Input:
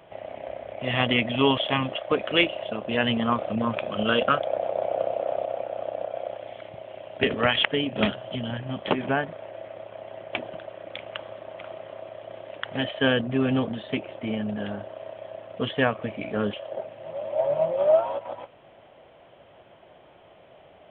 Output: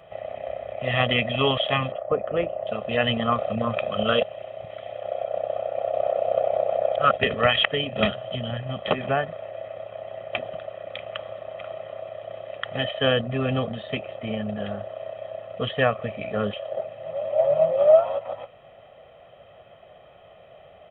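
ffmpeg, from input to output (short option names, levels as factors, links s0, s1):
-filter_complex "[0:a]asettb=1/sr,asplit=3[s0][s1][s2];[s0]atrim=end=1.924[s3];[s1]atrim=start=1.92:end=2.67,asetpts=PTS-STARTPTS,afade=t=in:d=0.004:c=qsin,afade=t=out:st=0.746:d=0.004:c=qsin,lowpass=1000[s4];[s2]atrim=start=2.666[s5];[s3][s4]acrossfade=d=0.004:c1=hsin:c2=qsin[s6];[s6][s5]acrossfade=d=0.004:c1=qsin:c2=hsin,asplit=3[s7][s8][s9];[s7]atrim=end=4.232[s10];[s8]atrim=start=4.228:end=7.162,asetpts=PTS-STARTPTS,areverse[s11];[s9]atrim=start=7.158[s12];[s10][s11]acrossfade=d=0.004:c1=hsin:c2=hsin[s13];[s13][s12]acrossfade=d=0.004:c1=hsin:c2=hsin,aecho=1:1:1.6:0.64"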